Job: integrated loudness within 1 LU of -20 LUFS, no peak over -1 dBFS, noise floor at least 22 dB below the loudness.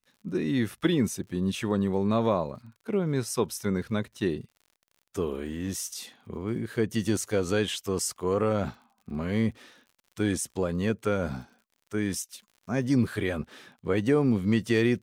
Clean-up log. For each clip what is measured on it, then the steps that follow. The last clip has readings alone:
ticks 54/s; loudness -28.5 LUFS; peak -10.0 dBFS; loudness target -20.0 LUFS
-> de-click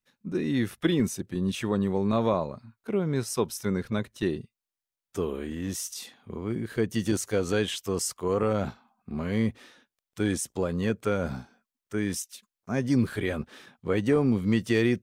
ticks 0.27/s; loudness -28.5 LUFS; peak -10.0 dBFS; loudness target -20.0 LUFS
-> gain +8.5 dB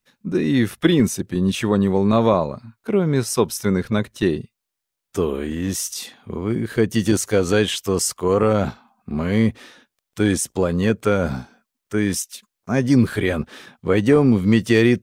loudness -20.0 LUFS; peak -1.5 dBFS; noise floor -82 dBFS

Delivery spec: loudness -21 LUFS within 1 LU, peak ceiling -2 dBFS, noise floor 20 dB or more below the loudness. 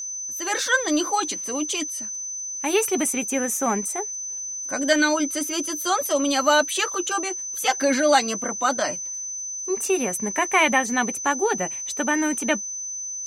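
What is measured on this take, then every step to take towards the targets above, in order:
steady tone 6100 Hz; tone level -29 dBFS; loudness -23.0 LUFS; peak -5.5 dBFS; loudness target -21.0 LUFS
-> notch 6100 Hz, Q 30; gain +2 dB

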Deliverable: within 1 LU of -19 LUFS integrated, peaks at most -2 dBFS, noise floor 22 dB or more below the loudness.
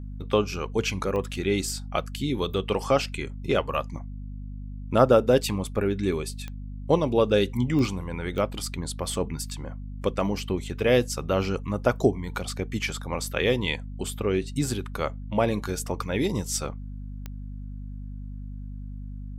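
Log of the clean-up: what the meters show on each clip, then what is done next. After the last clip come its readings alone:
clicks 5; hum 50 Hz; harmonics up to 250 Hz; hum level -34 dBFS; loudness -26.5 LUFS; peak -5.0 dBFS; loudness target -19.0 LUFS
-> de-click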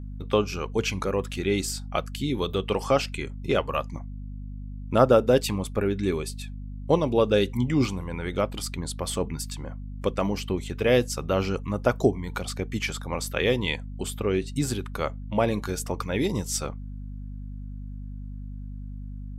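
clicks 0; hum 50 Hz; harmonics up to 250 Hz; hum level -34 dBFS
-> notches 50/100/150/200/250 Hz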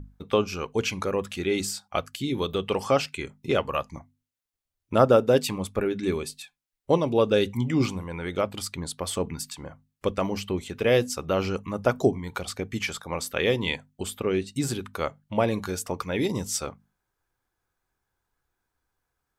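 hum none; loudness -27.0 LUFS; peak -5.5 dBFS; loudness target -19.0 LUFS
-> gain +8 dB; limiter -2 dBFS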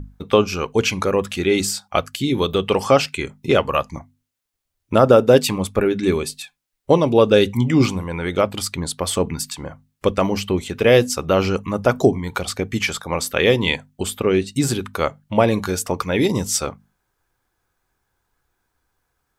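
loudness -19.5 LUFS; peak -2.0 dBFS; noise floor -76 dBFS

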